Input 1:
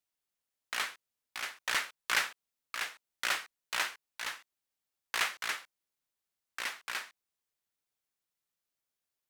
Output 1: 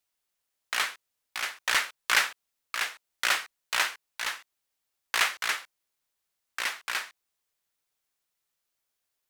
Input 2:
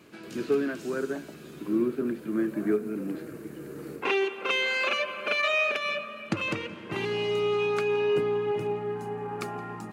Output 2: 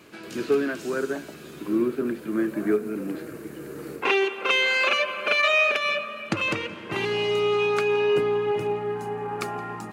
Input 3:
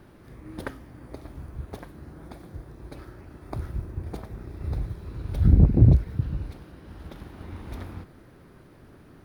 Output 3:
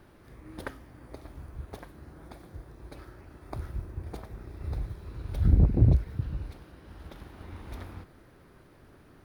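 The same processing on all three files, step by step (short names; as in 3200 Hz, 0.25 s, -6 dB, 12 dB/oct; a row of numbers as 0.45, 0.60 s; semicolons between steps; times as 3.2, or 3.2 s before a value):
bell 180 Hz -4.5 dB 2.2 oct; normalise peaks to -9 dBFS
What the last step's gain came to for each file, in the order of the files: +6.5, +5.5, -2.0 dB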